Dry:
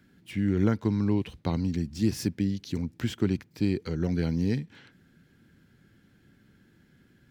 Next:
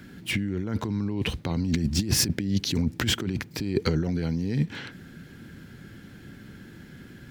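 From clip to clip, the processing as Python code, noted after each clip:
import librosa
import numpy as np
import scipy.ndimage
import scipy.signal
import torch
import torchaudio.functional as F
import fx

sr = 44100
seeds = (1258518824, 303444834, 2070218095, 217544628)

y = fx.over_compress(x, sr, threshold_db=-34.0, ratio=-1.0)
y = F.gain(torch.from_numpy(y), 8.0).numpy()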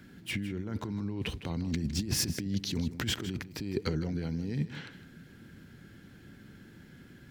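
y = x + 10.0 ** (-13.5 / 20.0) * np.pad(x, (int(158 * sr / 1000.0), 0))[:len(x)]
y = F.gain(torch.from_numpy(y), -7.0).numpy()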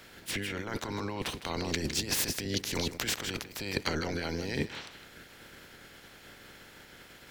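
y = fx.spec_clip(x, sr, under_db=23)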